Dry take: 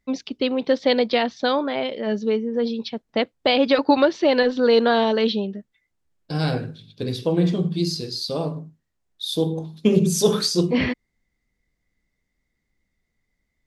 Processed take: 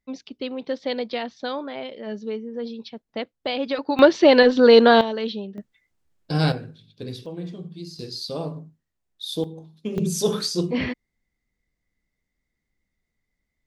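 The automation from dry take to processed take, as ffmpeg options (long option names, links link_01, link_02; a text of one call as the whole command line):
ffmpeg -i in.wav -af "asetnsamples=nb_out_samples=441:pad=0,asendcmd='3.99 volume volume 4.5dB;5.01 volume volume -7dB;5.58 volume volume 2.5dB;6.52 volume volume -7dB;7.26 volume volume -14dB;7.99 volume volume -4dB;9.44 volume volume -12dB;9.98 volume volume -4dB',volume=-8dB" out.wav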